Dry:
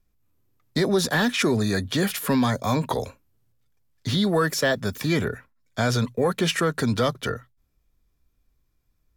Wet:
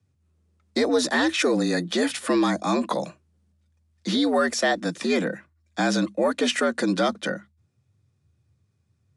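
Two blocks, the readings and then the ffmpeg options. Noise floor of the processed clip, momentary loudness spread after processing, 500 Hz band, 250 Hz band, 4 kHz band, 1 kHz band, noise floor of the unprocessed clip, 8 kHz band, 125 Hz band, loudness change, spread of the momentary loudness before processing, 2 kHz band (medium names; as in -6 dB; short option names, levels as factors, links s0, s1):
-70 dBFS, 10 LU, +1.0 dB, +1.0 dB, 0.0 dB, +1.0 dB, -70 dBFS, -0.5 dB, -9.5 dB, 0.0 dB, 10 LU, +0.5 dB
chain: -af "afreqshift=80,aresample=22050,aresample=44100"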